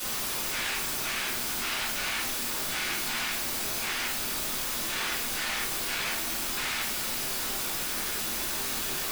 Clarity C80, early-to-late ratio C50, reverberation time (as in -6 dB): 8.5 dB, 4.5 dB, no single decay rate